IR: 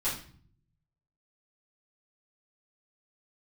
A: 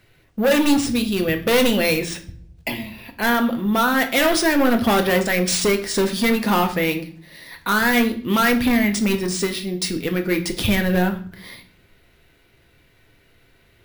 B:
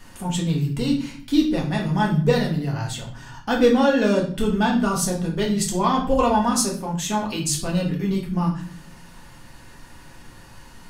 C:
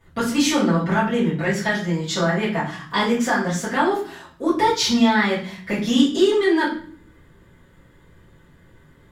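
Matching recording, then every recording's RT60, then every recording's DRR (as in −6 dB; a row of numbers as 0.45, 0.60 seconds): C; 0.50, 0.50, 0.50 seconds; 5.0, −2.5, −12.0 decibels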